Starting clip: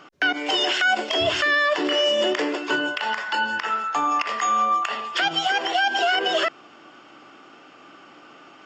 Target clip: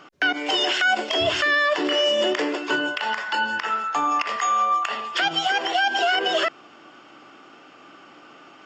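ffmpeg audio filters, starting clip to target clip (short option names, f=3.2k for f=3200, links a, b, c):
-filter_complex "[0:a]asettb=1/sr,asplit=3[a][b][c];[a]atrim=end=4.364[d];[b]atrim=start=4.36:end=4.85,asetpts=PTS-STARTPTS,afade=t=in:d=0.004:c=qsin,afade=t=out:st=0.486:d=0.004:c=qsin,highpass=390[e];[c]atrim=start=4.846[f];[d][e]acrossfade=d=0.004:c1=hsin:c2=qsin[g];[g][f]acrossfade=d=0.004:c1=qsin:c2=hsin"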